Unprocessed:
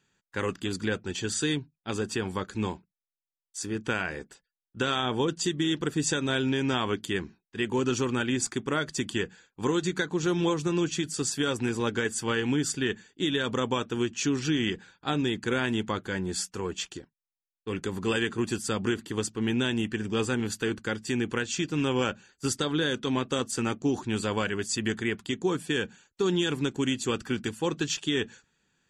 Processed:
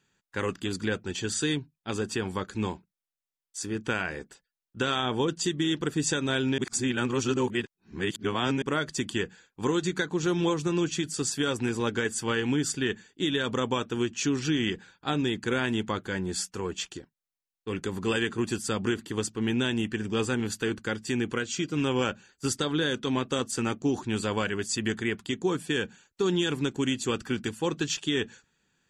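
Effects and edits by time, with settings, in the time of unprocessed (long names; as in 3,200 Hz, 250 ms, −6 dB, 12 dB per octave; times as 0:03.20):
0:06.58–0:08.62: reverse
0:21.34–0:21.77: notch comb filter 880 Hz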